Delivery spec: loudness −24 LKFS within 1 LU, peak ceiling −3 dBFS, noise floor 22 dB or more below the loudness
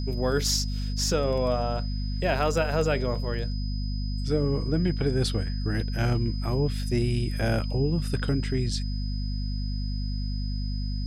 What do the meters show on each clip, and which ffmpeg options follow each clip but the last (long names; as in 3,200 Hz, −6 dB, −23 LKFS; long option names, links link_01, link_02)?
mains hum 50 Hz; hum harmonics up to 250 Hz; level of the hum −27 dBFS; interfering tone 5,000 Hz; level of the tone −42 dBFS; integrated loudness −27.5 LKFS; sample peak −12.0 dBFS; target loudness −24.0 LKFS
→ -af "bandreject=frequency=50:width_type=h:width=4,bandreject=frequency=100:width_type=h:width=4,bandreject=frequency=150:width_type=h:width=4,bandreject=frequency=200:width_type=h:width=4,bandreject=frequency=250:width_type=h:width=4"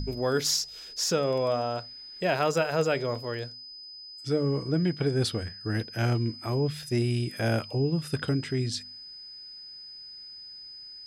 mains hum none found; interfering tone 5,000 Hz; level of the tone −42 dBFS
→ -af "bandreject=frequency=5000:width=30"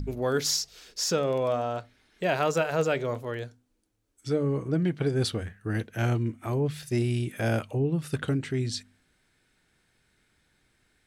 interfering tone none found; integrated loudness −28.5 LKFS; sample peak −13.5 dBFS; target loudness −24.0 LKFS
→ -af "volume=4.5dB"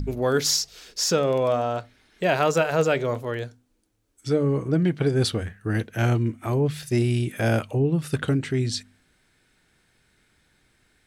integrated loudness −24.0 LKFS; sample peak −9.0 dBFS; background noise floor −67 dBFS